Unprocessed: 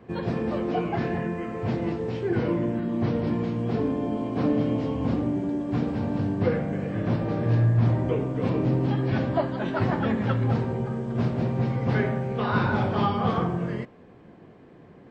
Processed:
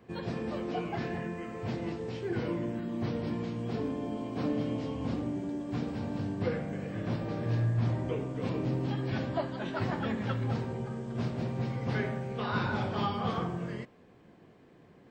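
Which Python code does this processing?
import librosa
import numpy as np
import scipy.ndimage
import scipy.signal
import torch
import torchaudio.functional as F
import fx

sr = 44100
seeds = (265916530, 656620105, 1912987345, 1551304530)

y = fx.high_shelf(x, sr, hz=3200.0, db=10.5)
y = y * librosa.db_to_amplitude(-8.0)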